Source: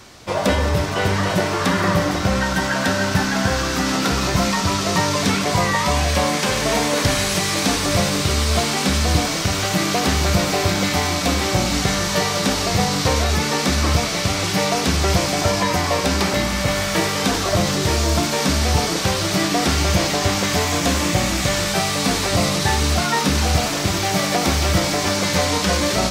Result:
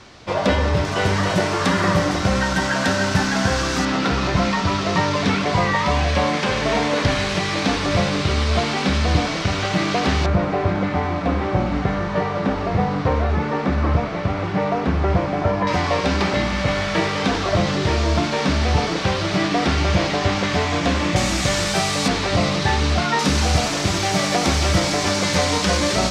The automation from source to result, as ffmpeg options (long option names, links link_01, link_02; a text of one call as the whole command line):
ffmpeg -i in.wav -af "asetnsamples=nb_out_samples=441:pad=0,asendcmd='0.85 lowpass f 8300;3.85 lowpass f 3800;10.26 lowpass f 1500;15.67 lowpass f 3700;21.16 lowpass f 8900;22.08 lowpass f 4300;23.19 lowpass f 8300',lowpass=4900" out.wav